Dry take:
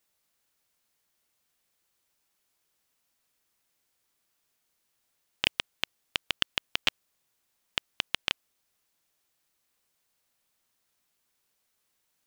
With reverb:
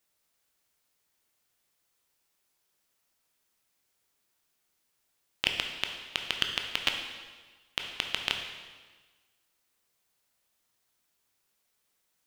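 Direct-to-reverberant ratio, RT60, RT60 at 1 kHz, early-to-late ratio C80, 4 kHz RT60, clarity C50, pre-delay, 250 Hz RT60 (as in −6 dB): 3.0 dB, 1.4 s, 1.4 s, 7.0 dB, 1.3 s, 5.0 dB, 8 ms, 1.4 s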